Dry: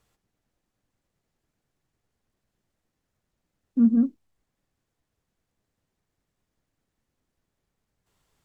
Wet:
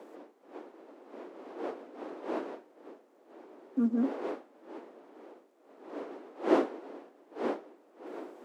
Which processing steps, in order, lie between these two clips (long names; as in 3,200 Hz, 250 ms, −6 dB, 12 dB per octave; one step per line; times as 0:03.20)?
wind on the microphone 380 Hz −37 dBFS
Butterworth high-pass 290 Hz 36 dB per octave
level +2 dB